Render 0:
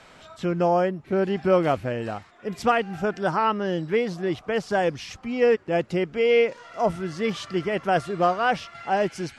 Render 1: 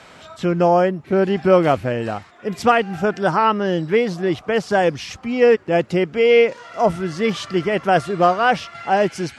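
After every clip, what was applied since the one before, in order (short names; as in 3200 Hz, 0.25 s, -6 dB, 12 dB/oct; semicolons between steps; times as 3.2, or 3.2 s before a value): HPF 51 Hz; gain +6 dB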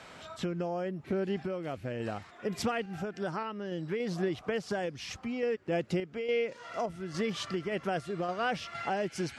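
dynamic EQ 960 Hz, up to -6 dB, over -29 dBFS, Q 1.2; compressor 6:1, threshold -25 dBFS, peak gain reduction 14 dB; random-step tremolo; gain -2.5 dB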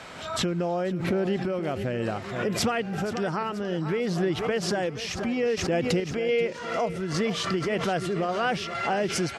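in parallel at -1 dB: limiter -29 dBFS, peak gain reduction 10 dB; on the sum: feedback echo 0.48 s, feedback 48%, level -13 dB; backwards sustainer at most 61 dB/s; gain +2 dB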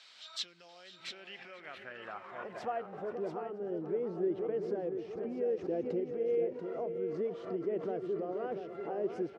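band-pass sweep 4200 Hz -> 400 Hz, 0.8–3.3; flange 0.43 Hz, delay 0.2 ms, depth 7.6 ms, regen -87%; echo 0.687 s -7.5 dB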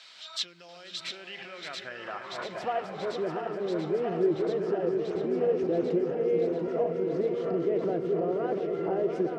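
regenerating reverse delay 0.684 s, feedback 73%, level -6.5 dB; on a send at -16 dB: reverb, pre-delay 3 ms; on the sum: gain +6 dB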